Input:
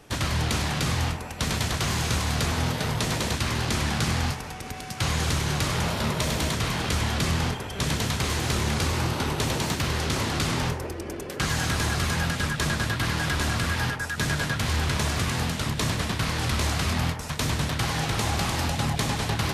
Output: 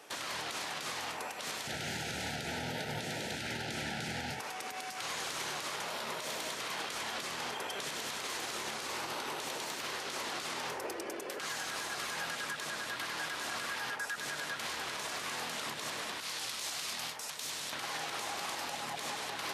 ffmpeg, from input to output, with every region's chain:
ffmpeg -i in.wav -filter_complex "[0:a]asettb=1/sr,asplit=3[link_01][link_02][link_03];[link_01]atrim=end=1.674[link_04];[link_02]atrim=start=1.67:end=4.4,asetpts=PTS-STARTPTS,afade=type=in:duration=0.004:curve=qsin,afade=type=out:start_time=2.726:duration=0.004:curve=qsin,asuperstop=centerf=1100:order=8:qfactor=2.7,bass=frequency=250:gain=14,treble=frequency=4000:gain=-5[link_05];[link_03]atrim=start=4.396[link_06];[link_04][link_05]acrossfade=duration=0.004:curve1=hsin:curve2=qsin[link_07];[link_07][link_06]acrossfade=duration=0.004:curve1=qsin:curve2=hsin,asettb=1/sr,asplit=3[link_08][link_09][link_10];[link_08]atrim=end=16.204[link_11];[link_09]atrim=start=16.2:end=17.73,asetpts=PTS-STARTPTS,afade=type=in:duration=0.004:curve=qsin,afade=type=out:start_time=1.526:duration=0.004:curve=qsin,lowshelf=frequency=140:gain=-9.5,acrossover=split=150|3000[link_12][link_13][link_14];[link_13]acompressor=threshold=-54dB:ratio=1.5:attack=3.2:release=140:knee=2.83:detection=peak[link_15];[link_12][link_15][link_14]amix=inputs=3:normalize=0,asoftclip=type=hard:threshold=-19.5dB[link_16];[link_10]atrim=start=17.726[link_17];[link_11][link_16]acrossfade=duration=0.004:curve1=hsin:curve2=qsin[link_18];[link_18][link_17]acrossfade=duration=0.004:curve1=qsin:curve2=hsin,highpass=470,acompressor=threshold=-32dB:ratio=6,alimiter=level_in=4dB:limit=-24dB:level=0:latency=1:release=78,volume=-4dB" out.wav

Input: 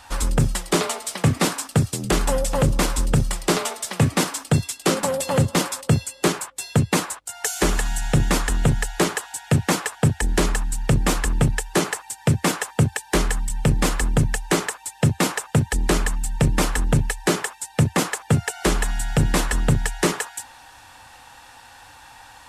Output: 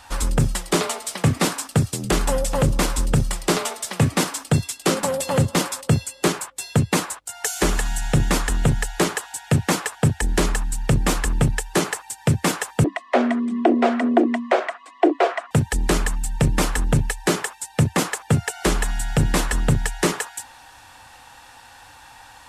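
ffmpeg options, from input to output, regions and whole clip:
ffmpeg -i in.wav -filter_complex "[0:a]asettb=1/sr,asplit=3[link_01][link_02][link_03];[link_01]atrim=end=12.844[link_04];[link_02]atrim=start=12.84:end=15.51,asetpts=PTS-STARTPTS,afade=type=in:duration=0.004:curve=qsin,afade=type=out:start_time=2.666:duration=0.004:curve=qsin,lowpass=2400,equalizer=frequency=500:width_type=o:width=0.28:gain=13.5,afreqshift=200[link_05];[link_03]atrim=start=15.506[link_06];[link_04][link_05]acrossfade=duration=0.004:curve1=hsin:curve2=qsin[link_07];[link_07][link_06]acrossfade=duration=0.004:curve1=qsin:curve2=hsin" out.wav

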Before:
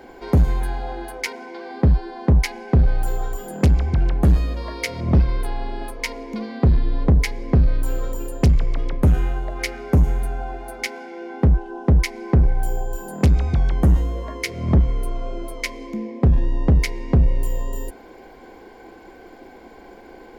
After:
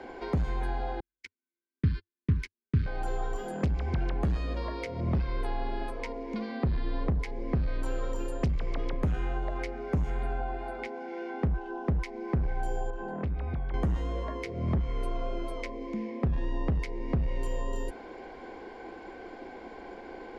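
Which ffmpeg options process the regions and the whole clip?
ffmpeg -i in.wav -filter_complex "[0:a]asettb=1/sr,asplit=3[link_01][link_02][link_03];[link_01]atrim=end=1.004[link_04];[link_02]atrim=start=1:end=2.86,asetpts=PTS-STARTPTS,afade=type=in:duration=0.004:curve=qsin,afade=type=out:start_time=1.856:duration=0.004:curve=qsin,agate=range=-57dB:threshold=-22dB:ratio=16:release=100:detection=peak,asuperstop=centerf=690:order=4:qfactor=0.58,equalizer=frequency=94:width_type=o:width=0.86:gain=14.5[link_05];[link_03]atrim=start=2.856[link_06];[link_04][link_05]acrossfade=duration=0.004:curve1=hsin:curve2=qsin[link_07];[link_07][link_06]acrossfade=duration=0.004:curve1=qsin:curve2=hsin,asettb=1/sr,asplit=3[link_08][link_09][link_10];[link_08]atrim=end=10.104[link_11];[link_09]atrim=start=10.1:end=10.85,asetpts=PTS-STARTPTS,afade=type=in:duration=0.004:curve=qsin,afade=type=out:start_time=0.746:duration=0.004:curve=qsin,acrossover=split=4200[link_12][link_13];[link_13]acompressor=threshold=-49dB:ratio=4:attack=1:release=60[link_14];[link_12][link_14]amix=inputs=2:normalize=0,equalizer=frequency=6000:width_type=o:width=0.23:gain=-11.5[link_15];[link_10]atrim=start=10.846[link_16];[link_11][link_15]acrossfade=duration=0.004:curve1=hsin:curve2=qsin[link_17];[link_17][link_16]acrossfade=duration=0.004:curve1=qsin:curve2=hsin,asettb=1/sr,asplit=3[link_18][link_19][link_20];[link_18]atrim=end=12.904[link_21];[link_19]atrim=start=12.9:end=13.74,asetpts=PTS-STARTPTS,afade=type=in:duration=0.004:curve=qsin,afade=type=out:start_time=0.836:duration=0.004:curve=qsin,lowpass=2500,acompressor=threshold=-28dB:ratio=3:attack=3.2:release=140:knee=1:detection=peak[link_22];[link_20]atrim=start=13.736[link_23];[link_21][link_22]acrossfade=duration=0.004:curve1=hsin:curve2=qsin[link_24];[link_24][link_23]acrossfade=duration=0.004:curve1=qsin:curve2=hsin,lowpass=6500,bass=frequency=250:gain=-4,treble=frequency=4000:gain=-4,acrossover=split=180|970[link_25][link_26][link_27];[link_25]acompressor=threshold=-28dB:ratio=4[link_28];[link_26]acompressor=threshold=-36dB:ratio=4[link_29];[link_27]acompressor=threshold=-44dB:ratio=4[link_30];[link_28][link_29][link_30]amix=inputs=3:normalize=0" out.wav

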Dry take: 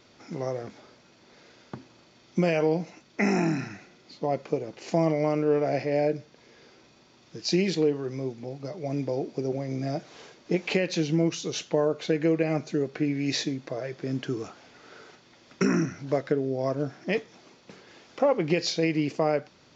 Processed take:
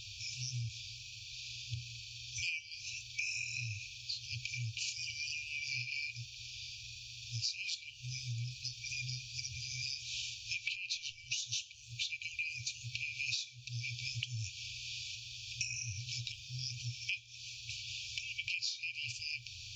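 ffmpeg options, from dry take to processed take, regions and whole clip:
ffmpeg -i in.wav -filter_complex "[0:a]asettb=1/sr,asplit=3[link_01][link_02][link_03];[link_01]atrim=end=10.584[link_04];[link_02]atrim=start=10.58:end=11.38,asetpts=PTS-STARTPTS,afade=type=in:duration=0.004:curve=qsin,afade=type=out:start_time=0.796:duration=0.004:curve=qsin,lowpass=6800,acompressor=threshold=-30dB:ratio=2:attack=3.2:release=140:knee=1:detection=peak[link_05];[link_03]atrim=start=11.376[link_06];[link_04][link_05]acrossfade=duration=0.004:curve1=hsin:curve2=qsin[link_07];[link_07][link_06]acrossfade=duration=0.004:curve1=qsin:curve2=hsin,afftfilt=real='re*(1-between(b*sr/4096,120,2300))':imag='im*(1-between(b*sr/4096,120,2300))':win_size=4096:overlap=0.75,acompressor=threshold=-50dB:ratio=10,volume=14dB" out.wav

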